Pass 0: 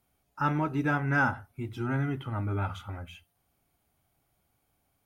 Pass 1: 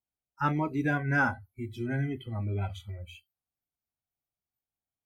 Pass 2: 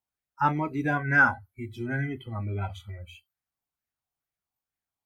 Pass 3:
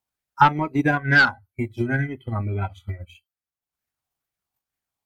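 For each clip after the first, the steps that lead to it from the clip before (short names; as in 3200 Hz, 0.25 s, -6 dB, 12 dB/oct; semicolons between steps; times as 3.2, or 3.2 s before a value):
spectral noise reduction 24 dB
LFO bell 2.2 Hz 870–1900 Hz +9 dB
sine folder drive 5 dB, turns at -9 dBFS; transient shaper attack +10 dB, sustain -10 dB; gain -4.5 dB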